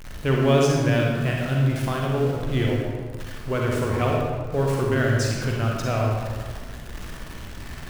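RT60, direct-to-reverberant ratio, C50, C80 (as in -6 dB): 1.6 s, -2.0 dB, -0.5 dB, 1.5 dB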